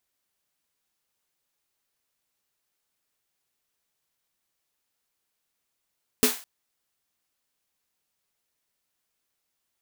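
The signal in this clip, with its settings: snare drum length 0.21 s, tones 250 Hz, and 430 Hz, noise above 620 Hz, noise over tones -0.5 dB, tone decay 0.17 s, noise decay 0.38 s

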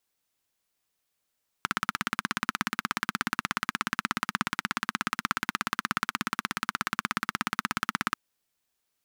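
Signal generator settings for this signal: single-cylinder engine model, steady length 6.49 s, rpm 2000, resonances 220/1300 Hz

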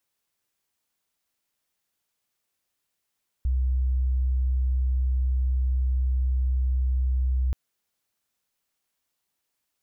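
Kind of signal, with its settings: tone sine 64 Hz -20.5 dBFS 4.08 s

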